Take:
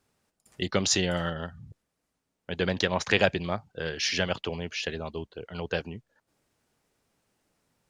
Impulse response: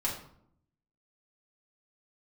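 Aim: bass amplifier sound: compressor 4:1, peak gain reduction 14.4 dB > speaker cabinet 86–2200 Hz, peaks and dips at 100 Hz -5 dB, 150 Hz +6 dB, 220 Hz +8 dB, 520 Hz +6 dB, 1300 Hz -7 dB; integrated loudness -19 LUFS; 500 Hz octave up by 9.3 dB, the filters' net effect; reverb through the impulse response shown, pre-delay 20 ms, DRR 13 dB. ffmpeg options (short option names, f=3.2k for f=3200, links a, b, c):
-filter_complex "[0:a]equalizer=f=500:t=o:g=6.5,asplit=2[a][b];[1:a]atrim=start_sample=2205,adelay=20[c];[b][c]afir=irnorm=-1:irlink=0,volume=-18.5dB[d];[a][d]amix=inputs=2:normalize=0,acompressor=threshold=-30dB:ratio=4,highpass=f=86:w=0.5412,highpass=f=86:w=1.3066,equalizer=f=100:t=q:w=4:g=-5,equalizer=f=150:t=q:w=4:g=6,equalizer=f=220:t=q:w=4:g=8,equalizer=f=520:t=q:w=4:g=6,equalizer=f=1.3k:t=q:w=4:g=-7,lowpass=f=2.2k:w=0.5412,lowpass=f=2.2k:w=1.3066,volume=14dB"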